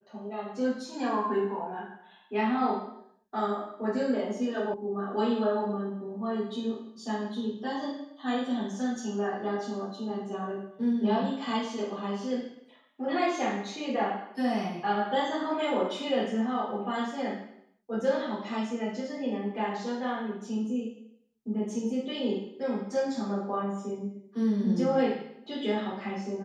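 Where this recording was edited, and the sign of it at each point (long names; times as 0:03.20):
0:04.74: cut off before it has died away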